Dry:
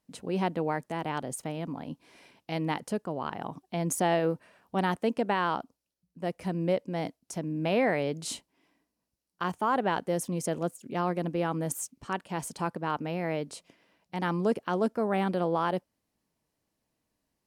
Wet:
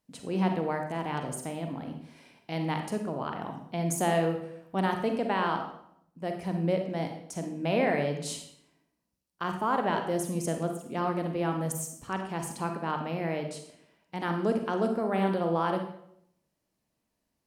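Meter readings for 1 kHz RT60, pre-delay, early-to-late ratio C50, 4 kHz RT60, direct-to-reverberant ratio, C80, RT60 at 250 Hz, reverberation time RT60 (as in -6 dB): 0.70 s, 36 ms, 6.0 dB, 0.55 s, 4.5 dB, 9.5 dB, 0.80 s, 0.70 s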